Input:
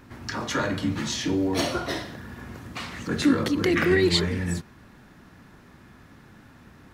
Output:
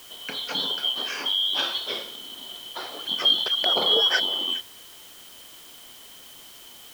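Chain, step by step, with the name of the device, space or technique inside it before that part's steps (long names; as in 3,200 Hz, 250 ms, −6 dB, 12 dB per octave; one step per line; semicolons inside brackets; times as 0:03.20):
split-band scrambled radio (band-splitting scrambler in four parts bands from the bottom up 2413; band-pass filter 380–2,900 Hz; white noise bed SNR 20 dB)
level +3.5 dB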